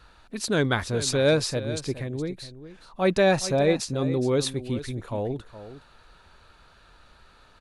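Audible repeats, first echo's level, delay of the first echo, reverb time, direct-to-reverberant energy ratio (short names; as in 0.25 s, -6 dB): 1, -13.5 dB, 0.417 s, none, none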